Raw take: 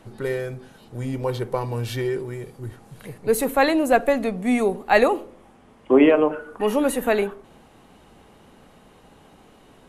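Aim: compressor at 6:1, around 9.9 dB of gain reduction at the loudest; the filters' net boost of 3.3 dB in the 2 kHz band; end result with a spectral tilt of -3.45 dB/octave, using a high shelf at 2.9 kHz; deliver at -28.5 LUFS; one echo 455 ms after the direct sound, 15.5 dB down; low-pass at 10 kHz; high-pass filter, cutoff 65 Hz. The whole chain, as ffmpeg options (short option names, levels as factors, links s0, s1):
-af "highpass=65,lowpass=10000,equalizer=f=2000:t=o:g=6,highshelf=f=2900:g=-6,acompressor=threshold=0.0891:ratio=6,aecho=1:1:455:0.168,volume=0.891"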